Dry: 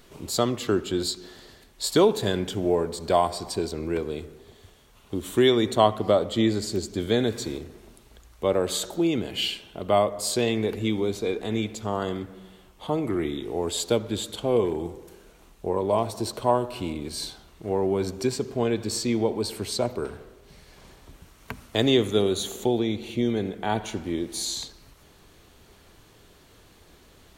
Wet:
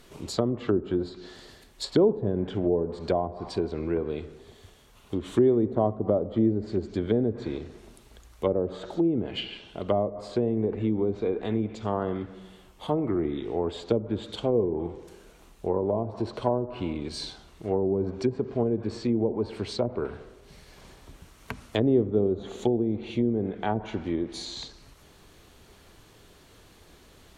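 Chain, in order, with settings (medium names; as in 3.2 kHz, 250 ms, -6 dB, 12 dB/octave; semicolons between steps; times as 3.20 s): low-pass that closes with the level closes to 500 Hz, closed at -20 dBFS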